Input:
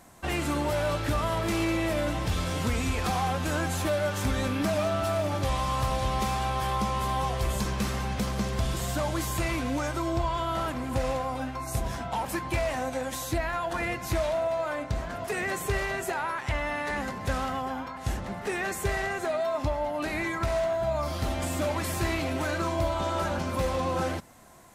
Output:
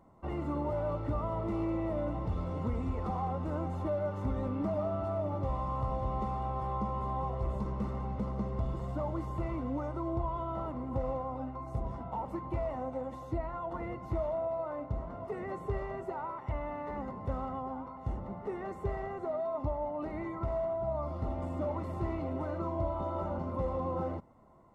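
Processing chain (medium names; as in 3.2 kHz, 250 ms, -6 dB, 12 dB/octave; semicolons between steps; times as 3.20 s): Savitzky-Golay filter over 65 samples; band-stop 720 Hz, Q 12; trim -5 dB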